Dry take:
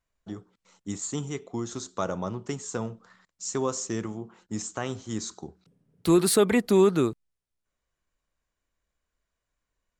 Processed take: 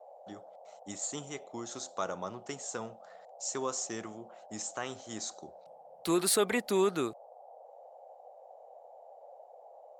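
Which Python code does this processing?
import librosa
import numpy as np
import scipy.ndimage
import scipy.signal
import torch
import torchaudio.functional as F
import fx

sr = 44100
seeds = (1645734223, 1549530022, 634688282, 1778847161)

y = fx.low_shelf(x, sr, hz=380.0, db=-9.5)
y = fx.dmg_noise_band(y, sr, seeds[0], low_hz=500.0, high_hz=810.0, level_db=-50.0)
y = fx.low_shelf(y, sr, hz=130.0, db=-8.0)
y = y * librosa.db_to_amplitude(-2.5)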